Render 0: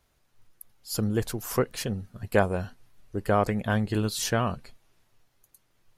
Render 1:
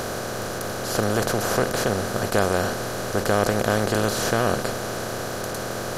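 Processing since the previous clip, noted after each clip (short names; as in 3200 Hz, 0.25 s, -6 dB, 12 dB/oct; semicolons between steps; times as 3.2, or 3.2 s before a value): per-bin compression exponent 0.2; gain -3 dB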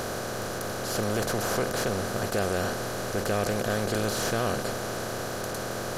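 soft clip -16 dBFS, distortion -12 dB; gain -3 dB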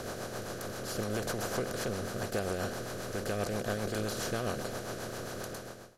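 ending faded out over 0.55 s; rotary speaker horn 7.5 Hz; gain -4.5 dB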